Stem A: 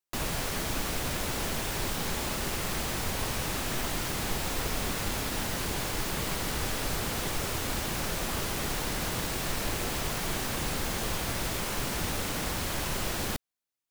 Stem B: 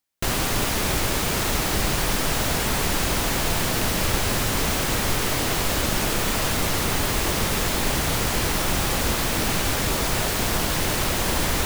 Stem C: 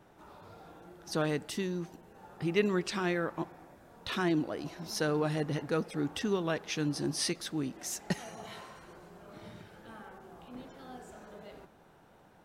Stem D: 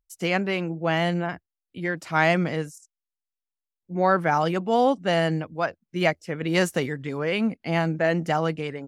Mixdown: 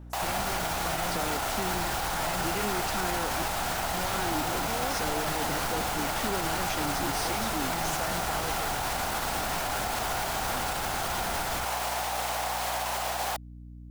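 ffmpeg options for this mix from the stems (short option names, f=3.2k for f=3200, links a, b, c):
-filter_complex "[0:a]highpass=f=750:t=q:w=4.2,volume=1.5dB[a];[1:a]equalizer=f=1.4k:t=o:w=0.27:g=12.5,alimiter=limit=-14.5dB:level=0:latency=1,volume=-8dB[b];[2:a]highpass=160,volume=-1dB[c];[3:a]volume=-15.5dB[d];[c][d]amix=inputs=2:normalize=0,alimiter=level_in=2dB:limit=-24dB:level=0:latency=1,volume=-2dB,volume=0dB[e];[a][b]amix=inputs=2:normalize=0,alimiter=limit=-21dB:level=0:latency=1,volume=0dB[f];[e][f]amix=inputs=2:normalize=0,aeval=exprs='val(0)+0.00708*(sin(2*PI*60*n/s)+sin(2*PI*2*60*n/s)/2+sin(2*PI*3*60*n/s)/3+sin(2*PI*4*60*n/s)/4+sin(2*PI*5*60*n/s)/5)':c=same"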